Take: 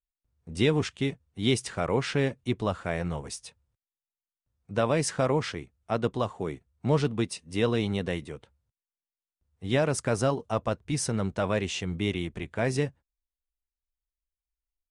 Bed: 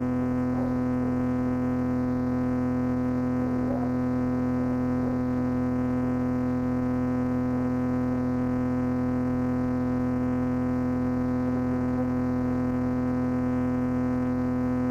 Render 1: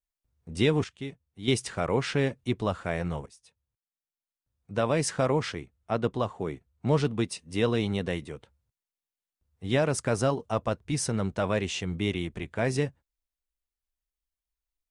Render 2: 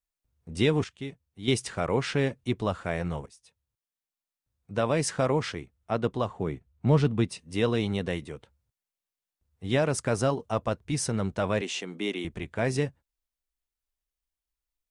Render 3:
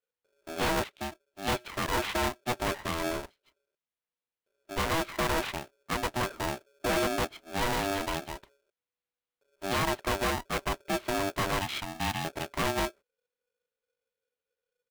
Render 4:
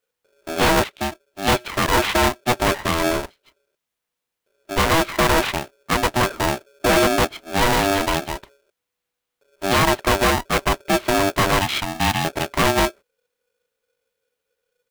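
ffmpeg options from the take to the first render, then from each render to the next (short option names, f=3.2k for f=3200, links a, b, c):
-filter_complex "[0:a]asettb=1/sr,asplit=3[a][b][c];[a]atrim=end=5.614[d];[b]atrim=start=5.61:end=6.87,asetpts=PTS-STARTPTS,afade=t=in:d=0.004:c=qsin,afade=t=out:st=1.256:d=0.004:c=qsin,highshelf=f=4.9k:g=-5[e];[c]atrim=start=6.866[f];[d][e]acrossfade=d=0.004:c1=hsin:c2=qsin[g];[g][f]acrossfade=d=0.004:c1=qsin:c2=hsin,asplit=4[h][i][j][k];[h]atrim=end=0.842[l];[i]atrim=start=0.838:end=1.482,asetpts=PTS-STARTPTS,volume=-8.5dB[m];[j]atrim=start=1.478:end=3.26,asetpts=PTS-STARTPTS,afade=t=out:st=1.778:d=0.004:c=hsin:silence=0.105925[n];[k]atrim=start=3.26,asetpts=PTS-STARTPTS,afade=t=in:d=1.78:silence=0.105925[o];[l][m]acrossfade=d=0.004:c1=hsin:c2=hsin[p];[n][o]concat=n=2:v=0:a=1[q];[p][q]acrossfade=d=0.004:c1=hsin:c2=hsin"
-filter_complex "[0:a]asettb=1/sr,asplit=3[a][b][c];[a]atrim=end=6.284[d];[b]atrim=start=6.28:end=7.41,asetpts=PTS-STARTPTS,afade=t=in:d=0.004:c=qsin,afade=t=out:st=1.126:d=0.004:c=qsin,bass=f=250:g=5,treble=f=4k:g=-4[e];[c]atrim=start=7.406[f];[d][e]acrossfade=d=0.004:c1=hsin:c2=qsin[g];[g][f]acrossfade=d=0.004:c1=qsin:c2=hsin,asettb=1/sr,asplit=3[h][i][j];[h]atrim=end=11.614[k];[i]atrim=start=11.61:end=12.25,asetpts=PTS-STARTPTS,afade=t=in:d=0.004:c=qsin,afade=t=out:st=0.636:d=0.004:c=qsin,highpass=f=230:w=0.5412,highpass=f=230:w=1.3066[l];[j]atrim=start=12.246[m];[k][l]acrossfade=d=0.004:c1=hsin:c2=qsin[n];[n][m]acrossfade=d=0.004:c1=qsin:c2=hsin"
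-af "aresample=8000,aeval=exprs='0.075*(abs(mod(val(0)/0.075+3,4)-2)-1)':c=same,aresample=44100,aeval=exprs='val(0)*sgn(sin(2*PI*490*n/s))':c=same"
-af "volume=11.5dB"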